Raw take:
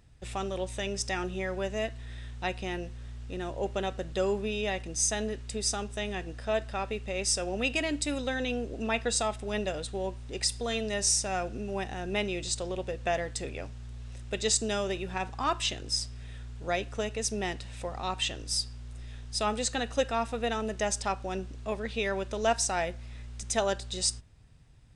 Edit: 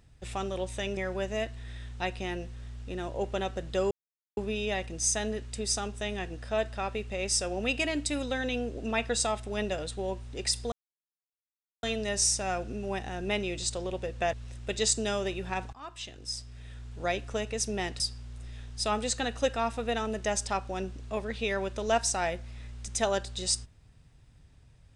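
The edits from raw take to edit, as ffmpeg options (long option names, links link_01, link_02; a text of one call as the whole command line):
ffmpeg -i in.wav -filter_complex "[0:a]asplit=7[link_01][link_02][link_03][link_04][link_05][link_06][link_07];[link_01]atrim=end=0.972[link_08];[link_02]atrim=start=1.388:end=4.33,asetpts=PTS-STARTPTS,afade=type=out:start_time=2.938:duration=0.004:curve=hsin,apad=pad_dur=0.46[link_09];[link_03]atrim=start=4.33:end=10.68,asetpts=PTS-STARTPTS,afade=type=in:duration=0.004:curve=hsin,afade=type=out:start_time=6.346:duration=0.004:curve=hsin,apad=pad_dur=1.11[link_10];[link_04]atrim=start=10.68:end=13.182,asetpts=PTS-STARTPTS,afade=type=in:duration=0.004:curve=hsin[link_11];[link_05]atrim=start=13.968:end=15.37,asetpts=PTS-STARTPTS,afade=type=out:start_time=1.398:duration=0.004:curve=hsin:silence=0.0944061[link_12];[link_06]atrim=start=15.37:end=17.642,asetpts=PTS-STARTPTS,afade=type=in:duration=1.29:silence=0.0944061[link_13];[link_07]atrim=start=18.548[link_14];[link_09][link_10][link_11]concat=n=3:v=0:a=1[link_15];[link_08][link_15]acrossfade=duration=0.004:curve1=hsin:curve2=hsin[link_16];[link_12][link_13]concat=n=2:v=0:a=1[link_17];[link_16][link_17]acrossfade=duration=0.004:curve1=hsin:curve2=hsin[link_18];[link_18][link_14]acrossfade=duration=0.004:curve1=hsin:curve2=hsin" out.wav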